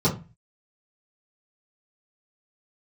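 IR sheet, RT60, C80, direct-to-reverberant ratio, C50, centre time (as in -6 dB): 0.30 s, 17.5 dB, -10.0 dB, 11.0 dB, 17 ms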